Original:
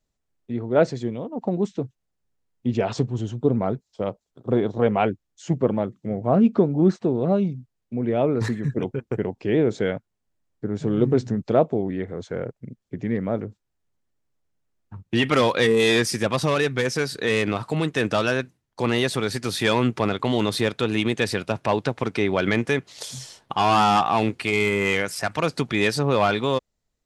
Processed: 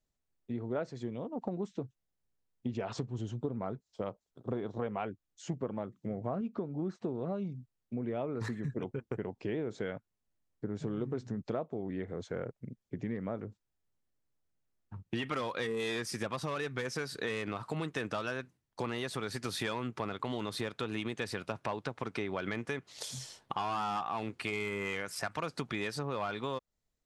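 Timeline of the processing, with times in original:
6.41–6.99 s: gain -3.5 dB
whole clip: dynamic bell 1.2 kHz, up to +5 dB, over -39 dBFS, Q 1.5; compression 6:1, threshold -26 dBFS; trim -6.5 dB

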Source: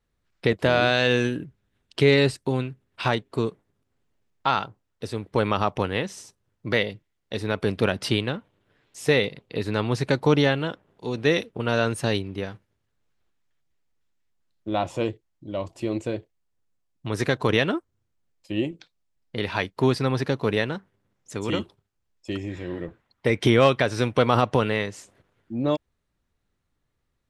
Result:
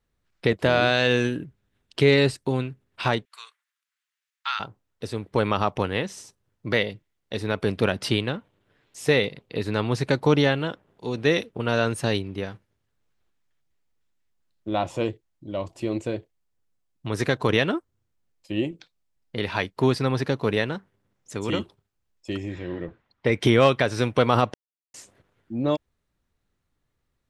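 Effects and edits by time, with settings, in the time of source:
3.25–4.60 s: high-pass 1.4 kHz 24 dB/octave
22.54–23.32 s: low-pass 5.5 kHz
24.54–24.94 s: mute

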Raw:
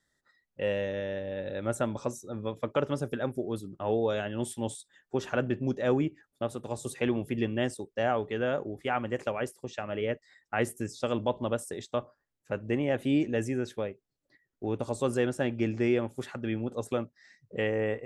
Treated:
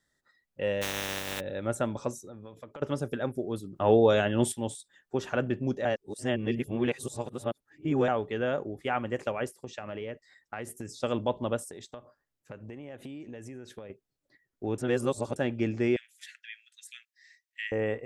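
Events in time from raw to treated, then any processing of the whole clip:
0.81–1.39 s: spectral contrast reduction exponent 0.25
2.20–2.82 s: compression 8:1, threshold -41 dBFS
3.76–4.52 s: gain +7 dB
5.85–8.08 s: reverse
9.62–11.02 s: compression, threshold -33 dBFS
11.63–13.90 s: compression 10:1, threshold -39 dBFS
14.78–15.36 s: reverse
15.96–17.72 s: steep high-pass 1.7 kHz 72 dB/octave

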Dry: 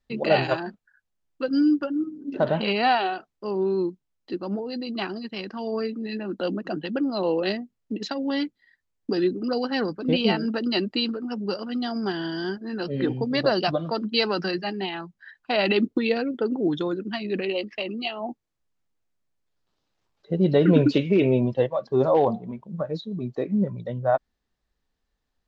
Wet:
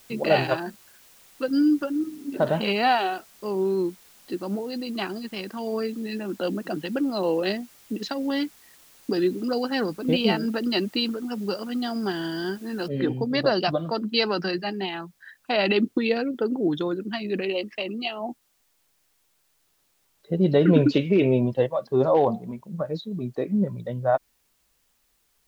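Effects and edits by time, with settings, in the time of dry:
12.88 s: noise floor step -54 dB -69 dB

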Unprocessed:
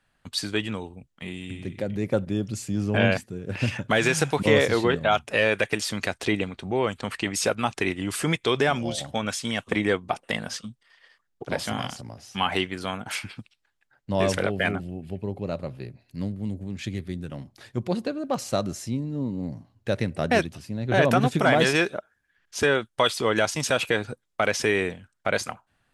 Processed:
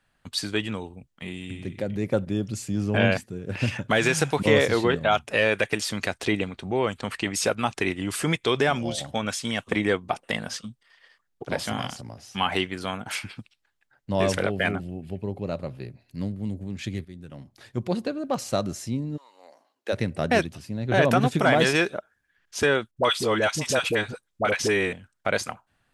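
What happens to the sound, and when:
17.05–17.82 s: fade in, from -12.5 dB
19.16–19.92 s: high-pass 1.1 kHz -> 290 Hz 24 dB/octave
22.91–24.93 s: phase dispersion highs, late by 56 ms, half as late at 730 Hz

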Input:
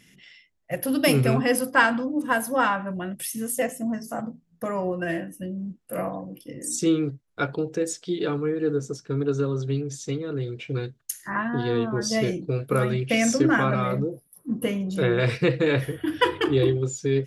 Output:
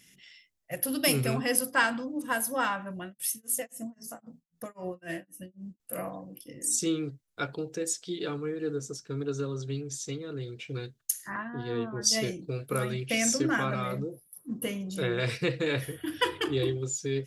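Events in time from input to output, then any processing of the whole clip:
3.03–5.80 s: tremolo 3.8 Hz, depth 99%
11.36–12.39 s: three bands expanded up and down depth 100%
whole clip: treble shelf 3.3 kHz +11.5 dB; trim -8 dB

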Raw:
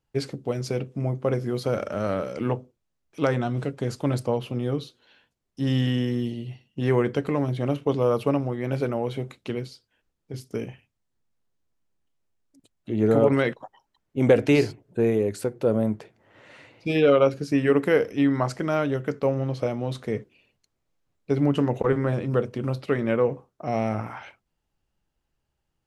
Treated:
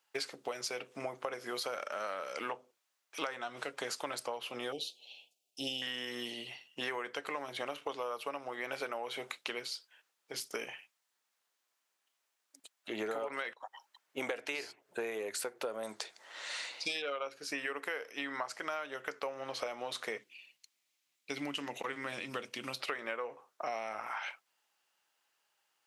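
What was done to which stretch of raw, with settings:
4.72–5.82 s: elliptic band-stop 750–2600 Hz
15.83–17.02 s: high-order bell 5.9 kHz +12 dB
20.18–22.80 s: high-order bell 800 Hz -10.5 dB 2.4 oct
whole clip: high-pass 970 Hz 12 dB/octave; compression 12:1, threshold -43 dBFS; trim +8.5 dB

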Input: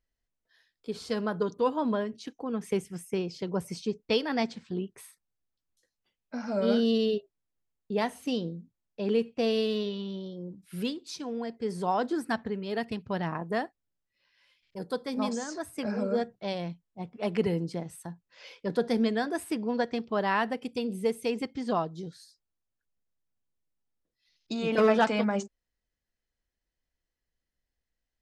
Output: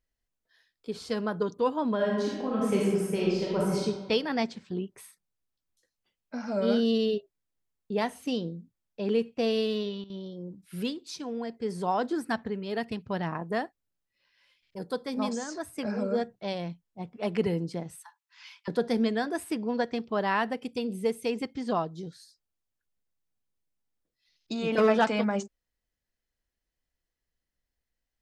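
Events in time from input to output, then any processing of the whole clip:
1.95–3.83 s: reverb throw, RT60 1.3 s, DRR -5 dB
9.64–10.50 s: dip -14 dB, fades 0.40 s logarithmic
18.02–18.68 s: steep high-pass 860 Hz 72 dB/octave

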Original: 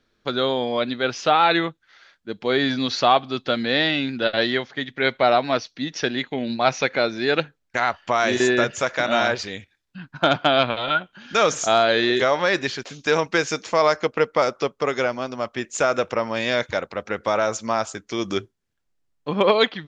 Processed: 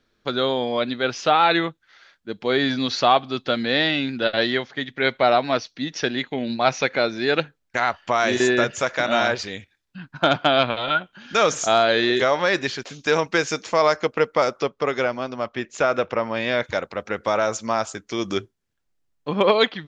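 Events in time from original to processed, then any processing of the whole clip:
14.62–16.63 s: low-pass 5.8 kHz -> 3.5 kHz

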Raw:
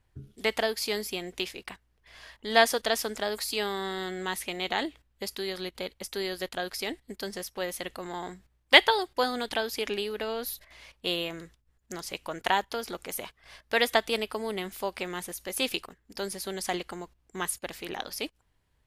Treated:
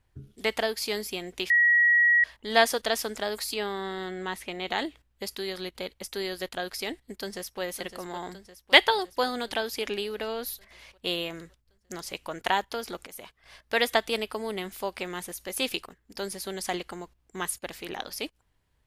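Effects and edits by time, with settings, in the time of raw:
1.50–2.24 s: bleep 1.91 kHz -17 dBFS
3.54–4.68 s: treble shelf 4.3 kHz -9.5 dB
7.17–7.61 s: echo throw 560 ms, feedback 65%, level -10.5 dB
13.07–13.78 s: fade in equal-power, from -12 dB

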